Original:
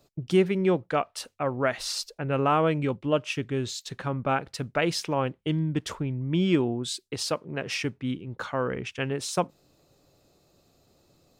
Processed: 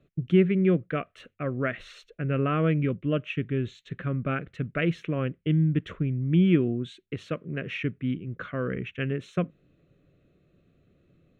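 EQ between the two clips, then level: distance through air 230 m; peaking EQ 170 Hz +4.5 dB 0.45 oct; static phaser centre 2.1 kHz, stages 4; +2.0 dB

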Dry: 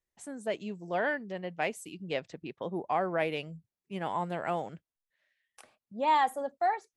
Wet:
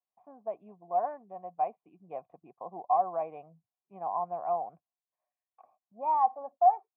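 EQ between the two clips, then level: cascade formant filter a; high-pass 110 Hz; bass shelf 340 Hz +6 dB; +8.0 dB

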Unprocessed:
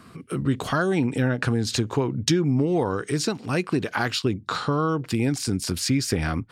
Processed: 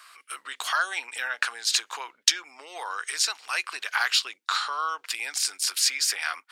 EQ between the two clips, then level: Bessel high-pass 1.5 kHz, order 4; +5.5 dB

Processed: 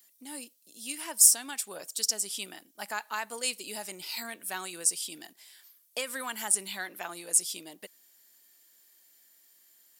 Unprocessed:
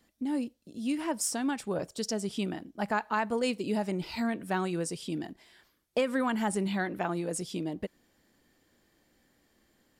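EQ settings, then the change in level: high-pass 220 Hz 6 dB/octave; tilt EQ +4.5 dB/octave; treble shelf 7.3 kHz +9.5 dB; -5.5 dB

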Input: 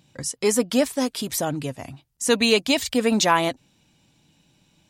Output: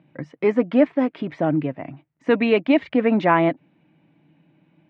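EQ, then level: cabinet simulation 150–2300 Hz, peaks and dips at 160 Hz +9 dB, 310 Hz +10 dB, 630 Hz +5 dB, 2.1 kHz +4 dB; 0.0 dB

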